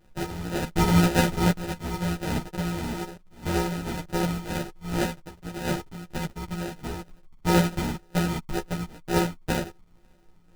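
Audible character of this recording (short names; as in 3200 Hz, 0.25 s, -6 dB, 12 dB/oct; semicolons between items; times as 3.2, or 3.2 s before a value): a buzz of ramps at a fixed pitch in blocks of 256 samples; phasing stages 12, 2 Hz, lowest notch 450–2500 Hz; aliases and images of a low sample rate 1100 Hz, jitter 0%; a shimmering, thickened sound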